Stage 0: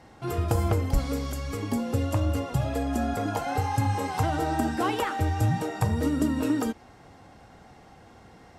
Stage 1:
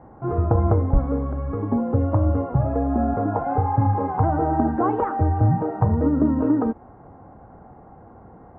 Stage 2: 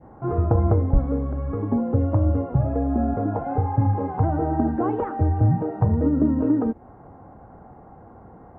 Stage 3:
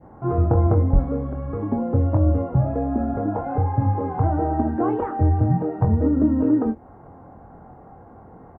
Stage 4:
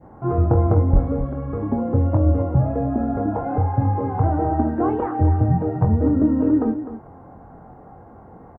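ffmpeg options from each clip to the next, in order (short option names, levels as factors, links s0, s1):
-af "lowpass=f=1200:w=0.5412,lowpass=f=1200:w=1.3066,volume=2"
-af "adynamicequalizer=threshold=0.0112:dfrequency=1100:dqfactor=1:tfrequency=1100:tqfactor=1:attack=5:release=100:ratio=0.375:range=3.5:mode=cutabove:tftype=bell"
-filter_complex "[0:a]asplit=2[s0][s1];[s1]adelay=23,volume=0.473[s2];[s0][s2]amix=inputs=2:normalize=0"
-af "aecho=1:1:253:0.266,volume=1.12"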